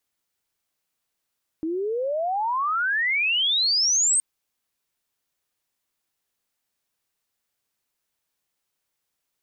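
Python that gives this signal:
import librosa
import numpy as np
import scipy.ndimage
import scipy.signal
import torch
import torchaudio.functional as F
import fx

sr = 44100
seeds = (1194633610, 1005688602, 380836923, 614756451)

y = fx.chirp(sr, length_s=2.57, from_hz=310.0, to_hz=8600.0, law='logarithmic', from_db=-24.0, to_db=-17.0)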